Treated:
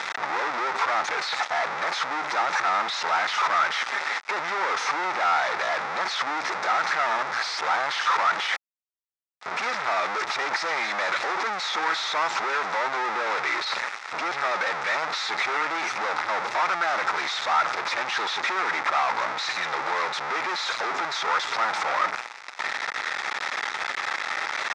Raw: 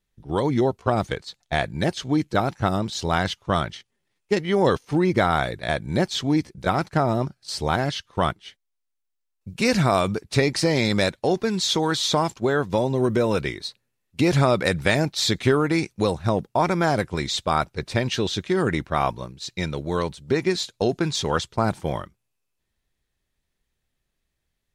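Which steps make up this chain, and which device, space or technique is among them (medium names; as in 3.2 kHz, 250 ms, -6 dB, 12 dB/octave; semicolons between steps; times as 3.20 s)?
home computer beeper (one-bit comparator; cabinet simulation 800–4800 Hz, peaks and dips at 850 Hz +7 dB, 1.3 kHz +8 dB, 2 kHz +5 dB, 3 kHz -9 dB, 4.4 kHz -6 dB); trim +1 dB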